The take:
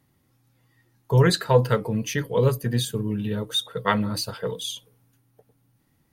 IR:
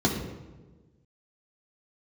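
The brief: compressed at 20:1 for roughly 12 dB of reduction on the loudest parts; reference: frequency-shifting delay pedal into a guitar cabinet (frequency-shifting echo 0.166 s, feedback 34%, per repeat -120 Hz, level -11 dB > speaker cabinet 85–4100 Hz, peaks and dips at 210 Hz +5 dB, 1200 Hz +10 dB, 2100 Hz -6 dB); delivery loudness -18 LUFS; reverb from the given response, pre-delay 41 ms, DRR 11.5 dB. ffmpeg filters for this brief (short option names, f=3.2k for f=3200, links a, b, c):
-filter_complex "[0:a]acompressor=threshold=-23dB:ratio=20,asplit=2[a][b];[1:a]atrim=start_sample=2205,adelay=41[c];[b][c]afir=irnorm=-1:irlink=0,volume=-24.5dB[d];[a][d]amix=inputs=2:normalize=0,asplit=5[e][f][g][h][i];[f]adelay=166,afreqshift=-120,volume=-11dB[j];[g]adelay=332,afreqshift=-240,volume=-20.4dB[k];[h]adelay=498,afreqshift=-360,volume=-29.7dB[l];[i]adelay=664,afreqshift=-480,volume=-39.1dB[m];[e][j][k][l][m]amix=inputs=5:normalize=0,highpass=85,equalizer=f=210:t=q:w=4:g=5,equalizer=f=1.2k:t=q:w=4:g=10,equalizer=f=2.1k:t=q:w=4:g=-6,lowpass=f=4.1k:w=0.5412,lowpass=f=4.1k:w=1.3066,volume=8dB"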